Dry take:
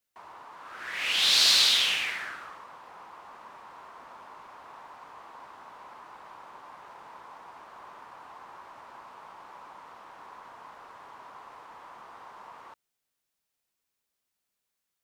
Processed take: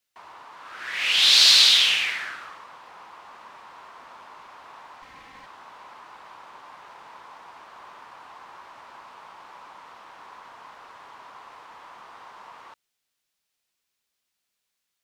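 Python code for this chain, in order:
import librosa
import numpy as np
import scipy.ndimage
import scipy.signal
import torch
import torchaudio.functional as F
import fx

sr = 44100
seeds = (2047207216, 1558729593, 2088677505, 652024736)

y = fx.lower_of_two(x, sr, delay_ms=3.8, at=(5.02, 5.46))
y = fx.peak_eq(y, sr, hz=3600.0, db=6.5, octaves=2.5)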